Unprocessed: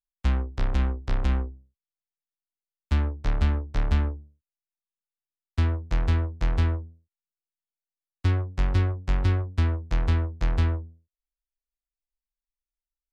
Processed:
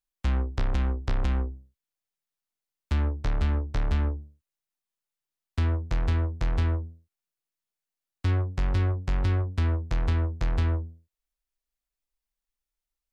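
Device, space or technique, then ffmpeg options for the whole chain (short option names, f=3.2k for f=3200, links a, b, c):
clipper into limiter: -af "asoftclip=type=hard:threshold=-14dB,alimiter=limit=-21.5dB:level=0:latency=1:release=194,volume=4dB"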